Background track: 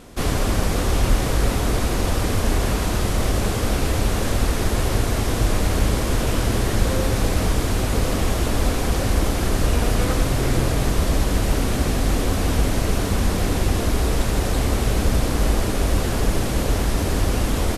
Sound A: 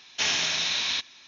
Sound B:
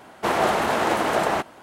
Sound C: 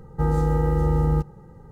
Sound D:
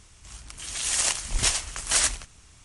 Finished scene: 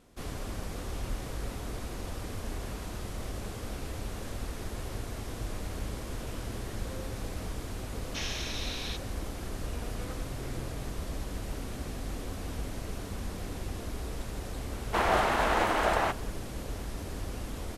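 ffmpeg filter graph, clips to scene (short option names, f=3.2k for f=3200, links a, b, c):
-filter_complex "[0:a]volume=-17dB[a];[2:a]equalizer=f=1.7k:w=0.34:g=6[b];[1:a]atrim=end=1.27,asetpts=PTS-STARTPTS,volume=-12dB,afade=t=in:d=0.004:c=hsin,afade=t=out:st=1.266:d=0.004:c=hsin,adelay=7960[c];[b]atrim=end=1.62,asetpts=PTS-STARTPTS,volume=-9.5dB,afade=t=in:d=0.004:c=hsin,afade=t=out:st=1.616:d=0.004:c=hsin,adelay=14700[d];[a][c][d]amix=inputs=3:normalize=0"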